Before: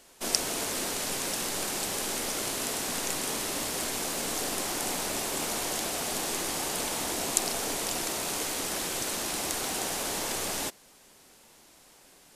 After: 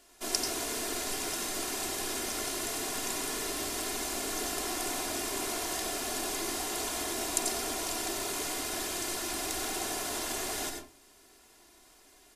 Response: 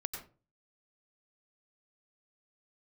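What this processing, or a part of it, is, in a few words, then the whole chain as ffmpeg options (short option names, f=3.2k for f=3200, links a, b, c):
microphone above a desk: -filter_complex "[0:a]aecho=1:1:2.9:0.6[a];[1:a]atrim=start_sample=2205[b];[a][b]afir=irnorm=-1:irlink=0,volume=-4dB"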